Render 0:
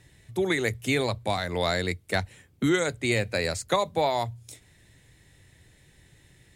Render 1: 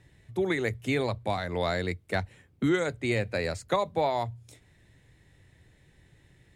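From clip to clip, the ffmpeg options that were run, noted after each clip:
-af "highshelf=f=3.7k:g=-10.5,volume=-1.5dB"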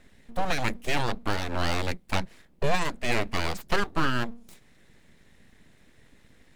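-af "aeval=exprs='abs(val(0))':c=same,volume=4dB"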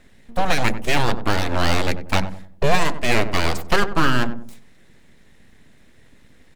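-filter_complex "[0:a]asplit=2[a][b];[b]acrusher=bits=4:mix=0:aa=0.5,volume=-7dB[c];[a][c]amix=inputs=2:normalize=0,asplit=2[d][e];[e]adelay=94,lowpass=f=820:p=1,volume=-9dB,asplit=2[f][g];[g]adelay=94,lowpass=f=820:p=1,volume=0.4,asplit=2[h][i];[i]adelay=94,lowpass=f=820:p=1,volume=0.4,asplit=2[j][k];[k]adelay=94,lowpass=f=820:p=1,volume=0.4[l];[d][f][h][j][l]amix=inputs=5:normalize=0,volume=4dB"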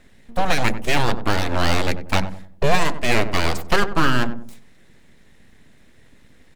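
-af anull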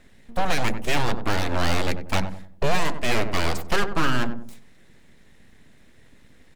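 -af "asoftclip=type=tanh:threshold=-8dB,volume=-1.5dB"

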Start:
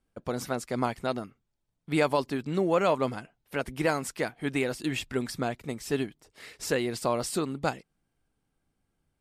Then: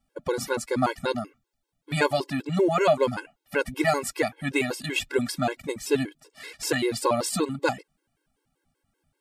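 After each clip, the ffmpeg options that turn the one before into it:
-af "lowshelf=f=210:g=-5.5,afftfilt=real='re*gt(sin(2*PI*5.2*pts/sr)*(1-2*mod(floor(b*sr/1024/280),2)),0)':imag='im*gt(sin(2*PI*5.2*pts/sr)*(1-2*mod(floor(b*sr/1024/280),2)),0)':win_size=1024:overlap=0.75,volume=8.5dB"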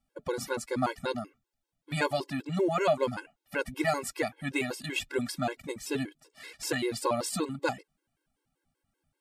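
-af "bandreject=f=430:w=12,volume=-5dB"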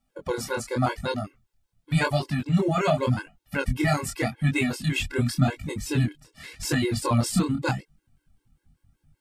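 -af "asubboost=boost=9:cutoff=150,flanger=delay=19.5:depth=7.9:speed=0.88,volume=7.5dB"

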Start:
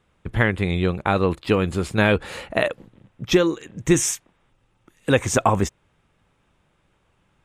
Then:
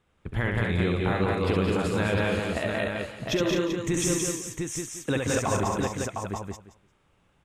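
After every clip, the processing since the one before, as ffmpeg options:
-filter_complex "[0:a]asplit=2[a][b];[b]aecho=0:1:175|350|525:0.562|0.101|0.0182[c];[a][c]amix=inputs=2:normalize=0,alimiter=limit=-11.5dB:level=0:latency=1:release=176,asplit=2[d][e];[e]aecho=0:1:68|210|705:0.631|0.631|0.596[f];[d][f]amix=inputs=2:normalize=0,volume=-5.5dB"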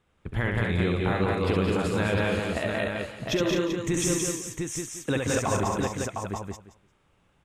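-af anull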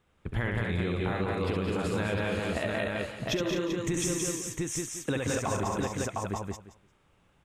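-af "acompressor=threshold=-26dB:ratio=6"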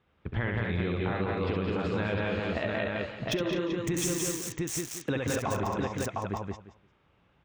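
-filter_complex "[0:a]highpass=44,acrossover=split=5100[a][b];[b]acrusher=bits=5:mix=0:aa=0.000001[c];[a][c]amix=inputs=2:normalize=0"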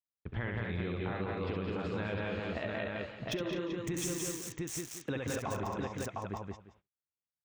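-af "agate=range=-37dB:threshold=-57dB:ratio=16:detection=peak,volume=-6dB"

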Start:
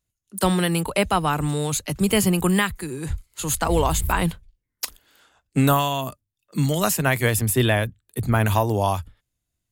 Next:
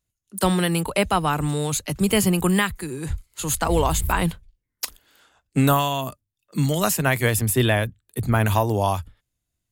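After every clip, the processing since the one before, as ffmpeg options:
-af anull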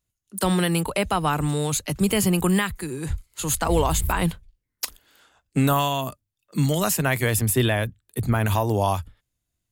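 -af "alimiter=limit=-10.5dB:level=0:latency=1:release=58"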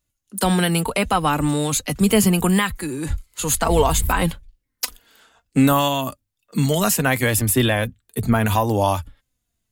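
-af "flanger=delay=3.3:depth=1.3:regen=48:speed=0.67:shape=triangular,volume=8dB"

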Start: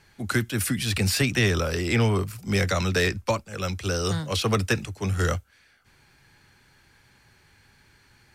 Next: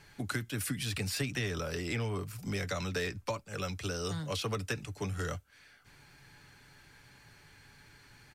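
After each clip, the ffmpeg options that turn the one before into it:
-af "acompressor=threshold=-36dB:ratio=3,aecho=1:1:6.9:0.31"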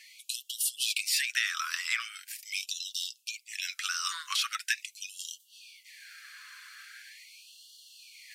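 -af "areverse,acompressor=mode=upward:threshold=-50dB:ratio=2.5,areverse,afftfilt=real='re*gte(b*sr/1024,990*pow(2800/990,0.5+0.5*sin(2*PI*0.42*pts/sr)))':imag='im*gte(b*sr/1024,990*pow(2800/990,0.5+0.5*sin(2*PI*0.42*pts/sr)))':win_size=1024:overlap=0.75,volume=9dB"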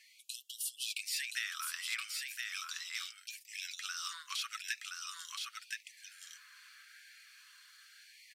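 -af "aecho=1:1:1022:0.668,volume=-9dB"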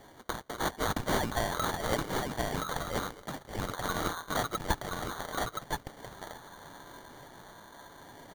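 -af "acrusher=samples=17:mix=1:aa=0.000001,volume=8.5dB"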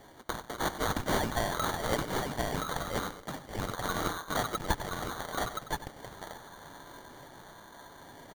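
-af "aecho=1:1:95:0.224"

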